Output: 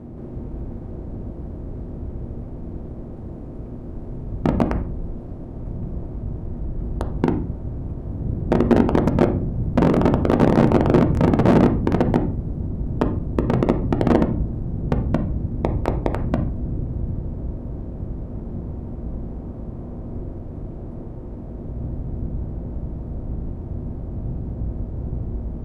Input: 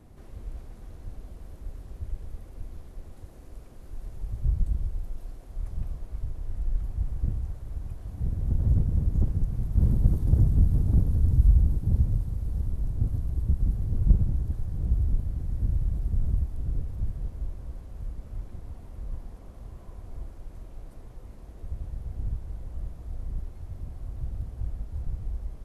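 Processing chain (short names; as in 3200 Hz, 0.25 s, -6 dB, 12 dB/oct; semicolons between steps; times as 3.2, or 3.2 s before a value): per-bin compression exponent 0.6; in parallel at -1.5 dB: limiter -17.5 dBFS, peak gain reduction 11 dB; on the sum: wrapped overs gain 8.5 dB; band-pass 410 Hz, Q 0.61; on a send at -4 dB: air absorption 300 m + reverb RT60 0.50 s, pre-delay 3 ms; on the sum: gain +1.5 dB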